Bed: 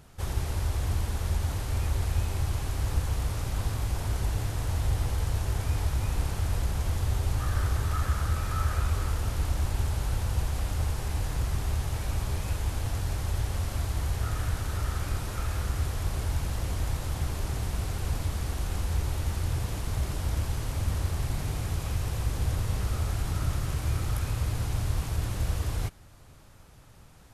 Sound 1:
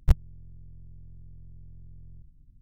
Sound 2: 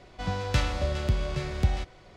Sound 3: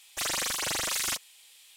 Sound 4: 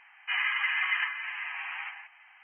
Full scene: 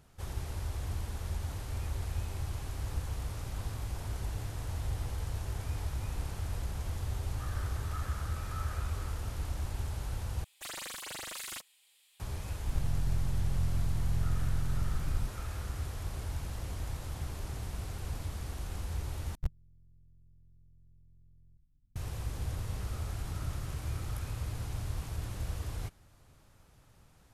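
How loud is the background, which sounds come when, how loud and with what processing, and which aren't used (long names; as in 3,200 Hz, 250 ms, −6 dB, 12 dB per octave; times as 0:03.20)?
bed −8 dB
0:10.44: overwrite with 3 −10.5 dB + parametric band 5,800 Hz −6.5 dB 0.4 octaves
0:12.67: mix in 1 −17.5 dB + envelope flattener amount 100%
0:19.35: overwrite with 1 −14 dB
not used: 2, 4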